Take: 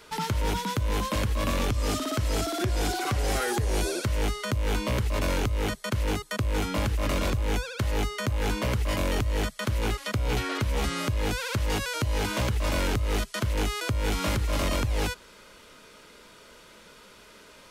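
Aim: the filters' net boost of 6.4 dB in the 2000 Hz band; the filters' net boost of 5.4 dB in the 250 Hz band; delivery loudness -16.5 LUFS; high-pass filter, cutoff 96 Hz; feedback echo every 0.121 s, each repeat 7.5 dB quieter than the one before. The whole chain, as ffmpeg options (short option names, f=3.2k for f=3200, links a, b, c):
-af "highpass=96,equalizer=f=250:t=o:g=7,equalizer=f=2k:t=o:g=8,aecho=1:1:121|242|363|484|605:0.422|0.177|0.0744|0.0312|0.0131,volume=9dB"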